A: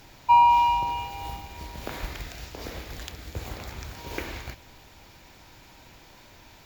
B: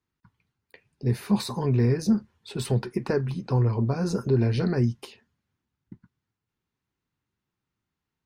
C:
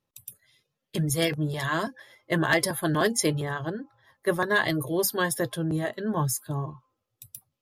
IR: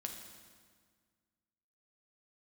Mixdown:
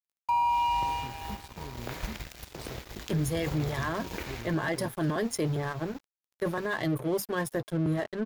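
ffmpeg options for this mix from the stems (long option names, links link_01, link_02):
-filter_complex "[0:a]volume=0.5dB[link_01];[1:a]acompressor=threshold=-31dB:ratio=6,volume=-6dB[link_02];[2:a]highshelf=frequency=2100:gain=-9,adelay=2150,volume=1.5dB[link_03];[link_01][link_02][link_03]amix=inputs=3:normalize=0,aeval=exprs='sgn(val(0))*max(abs(val(0))-0.01,0)':channel_layout=same,alimiter=limit=-20.5dB:level=0:latency=1:release=15"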